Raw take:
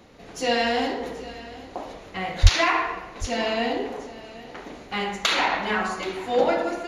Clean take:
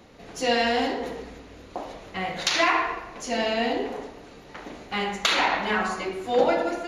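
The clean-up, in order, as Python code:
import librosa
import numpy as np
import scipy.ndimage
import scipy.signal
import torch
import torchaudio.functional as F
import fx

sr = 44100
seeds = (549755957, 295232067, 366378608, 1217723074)

y = fx.highpass(x, sr, hz=140.0, slope=24, at=(2.42, 2.54), fade=0.02)
y = fx.fix_echo_inverse(y, sr, delay_ms=778, level_db=-17.5)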